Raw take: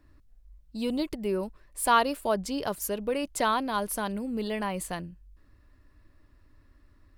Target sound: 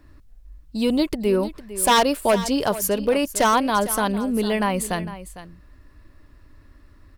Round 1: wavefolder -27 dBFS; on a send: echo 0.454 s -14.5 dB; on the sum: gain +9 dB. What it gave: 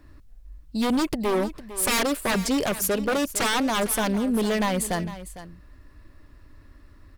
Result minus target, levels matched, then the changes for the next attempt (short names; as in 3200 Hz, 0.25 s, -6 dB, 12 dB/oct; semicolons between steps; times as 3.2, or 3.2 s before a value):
wavefolder: distortion +10 dB
change: wavefolder -18.5 dBFS